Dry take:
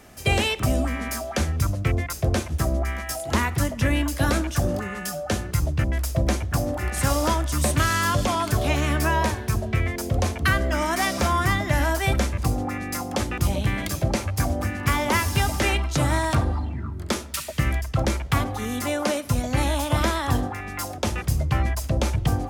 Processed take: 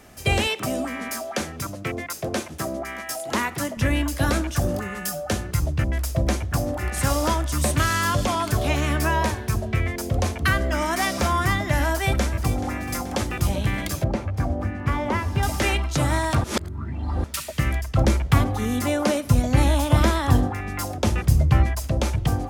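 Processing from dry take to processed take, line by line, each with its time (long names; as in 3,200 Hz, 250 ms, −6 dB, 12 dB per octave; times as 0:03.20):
0:00.47–0:03.77: high-pass filter 200 Hz
0:04.61–0:05.33: high-shelf EQ 11,000 Hz +8 dB
0:11.82–0:12.61: delay throw 430 ms, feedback 70%, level −13.5 dB
0:14.04–0:15.43: low-pass filter 1,100 Hz 6 dB per octave
0:16.44–0:17.24: reverse
0:17.96–0:21.64: low-shelf EQ 420 Hz +6 dB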